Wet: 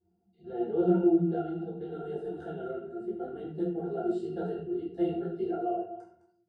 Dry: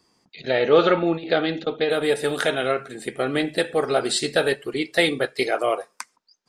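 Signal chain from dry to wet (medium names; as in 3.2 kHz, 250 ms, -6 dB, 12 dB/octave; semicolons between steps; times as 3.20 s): chunks repeated in reverse 149 ms, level -13.5 dB; FFT filter 640 Hz 0 dB, 2.4 kHz -15 dB, 6.7 kHz -1 dB; vibrato 1.4 Hz 32 cents; pitch-class resonator F, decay 0.15 s; reverberation RT60 0.55 s, pre-delay 6 ms, DRR -2 dB; detune thickener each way 32 cents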